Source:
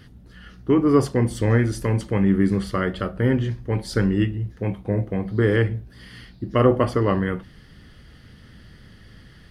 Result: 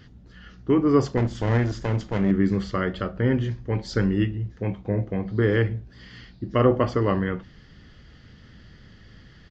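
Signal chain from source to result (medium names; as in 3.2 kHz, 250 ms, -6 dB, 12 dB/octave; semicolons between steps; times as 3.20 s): 1.17–2.31 s: comb filter that takes the minimum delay 0.58 ms; resampled via 16 kHz; trim -2 dB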